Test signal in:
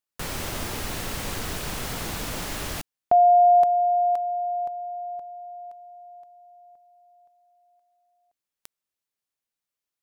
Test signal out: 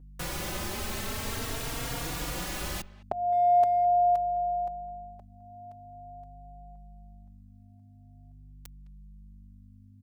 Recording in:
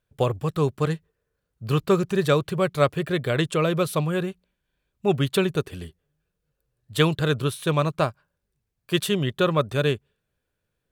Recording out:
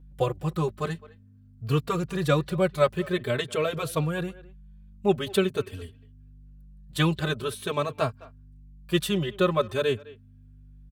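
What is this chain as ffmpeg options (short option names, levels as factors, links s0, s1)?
-filter_complex "[0:a]asplit=2[s0][s1];[s1]adelay=210,highpass=300,lowpass=3400,asoftclip=type=hard:threshold=0.211,volume=0.1[s2];[s0][s2]amix=inputs=2:normalize=0,aeval=exprs='val(0)+0.00501*(sin(2*PI*50*n/s)+sin(2*PI*2*50*n/s)/2+sin(2*PI*3*50*n/s)/3+sin(2*PI*4*50*n/s)/4+sin(2*PI*5*50*n/s)/5)':c=same,asplit=2[s3][s4];[s4]adelay=3.7,afreqshift=0.46[s5];[s3][s5]amix=inputs=2:normalize=1"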